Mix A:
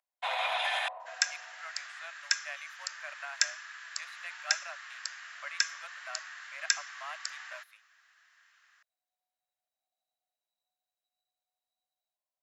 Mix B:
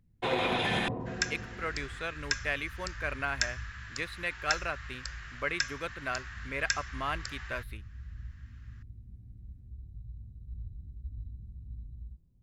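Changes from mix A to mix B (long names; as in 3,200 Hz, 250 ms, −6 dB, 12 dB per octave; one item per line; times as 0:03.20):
speech +9.0 dB
second sound: add high-shelf EQ 5,700 Hz −8.5 dB
master: remove Butterworth high-pass 590 Hz 96 dB per octave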